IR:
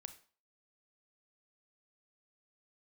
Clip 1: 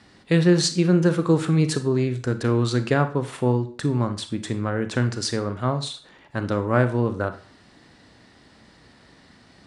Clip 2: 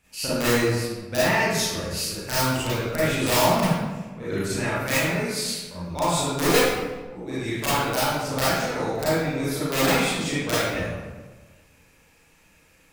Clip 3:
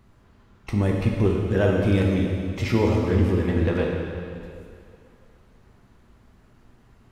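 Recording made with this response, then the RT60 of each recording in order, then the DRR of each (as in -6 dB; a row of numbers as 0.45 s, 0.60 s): 1; 0.45 s, 1.3 s, 2.4 s; 9.5 dB, -12.0 dB, -1.0 dB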